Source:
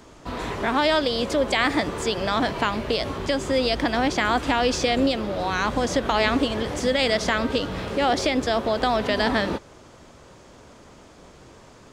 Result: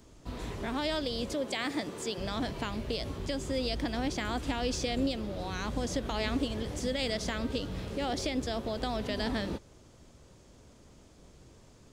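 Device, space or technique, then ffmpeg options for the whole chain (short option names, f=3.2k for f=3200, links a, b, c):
smiley-face EQ: -filter_complex "[0:a]lowshelf=f=120:g=7,equalizer=f=1.2k:t=o:w=2.3:g=-7,highshelf=f=7.6k:g=4.5,asettb=1/sr,asplit=3[a][b][c];[a]atrim=end=1.334[d];[b]atrim=start=1.33:end=2.18,asetpts=PTS-STARTPTS,afade=t=in:d=0.004:c=qsin,afade=t=out:st=0.846:d=0.004:c=qsin,highpass=180[e];[c]atrim=start=2.176[f];[d][e]acrossfade=d=0.004:c1=hsin:c2=qsin[g];[g][f]acrossfade=d=0.004:c1=qsin:c2=hsin,volume=-8.5dB"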